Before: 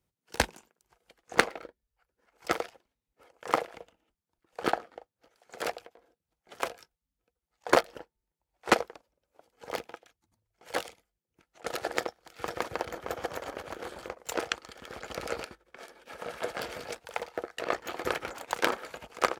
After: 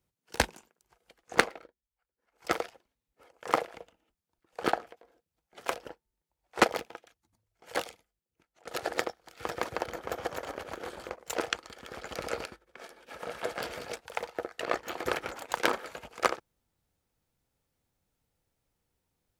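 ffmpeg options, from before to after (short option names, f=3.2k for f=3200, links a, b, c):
-filter_complex "[0:a]asplit=7[a][b][c][d][e][f][g];[a]atrim=end=1.69,asetpts=PTS-STARTPTS,afade=t=out:st=1.38:d=0.31:silence=0.266073[h];[b]atrim=start=1.69:end=2.22,asetpts=PTS-STARTPTS,volume=-11.5dB[i];[c]atrim=start=2.22:end=4.872,asetpts=PTS-STARTPTS,afade=t=in:d=0.31:silence=0.266073[j];[d]atrim=start=5.808:end=6.742[k];[e]atrim=start=7.898:end=8.782[l];[f]atrim=start=9.668:end=11.71,asetpts=PTS-STARTPTS,afade=t=out:st=1.162:d=0.88:silence=0.334965[m];[g]atrim=start=11.71,asetpts=PTS-STARTPTS,afade=t=in:d=0.004:c=hsin:silence=0.334965[n];[h][i][j]concat=n=3:v=0:a=1[o];[o][k]acrossfade=d=0.004:c1=hsin:c2=hsin[p];[p][l]acrossfade=d=0.004:c1=hsin:c2=hsin[q];[m][n]concat=n=2:v=0:a=1[r];[q][r]acrossfade=d=0.004:c1=hsin:c2=hsin"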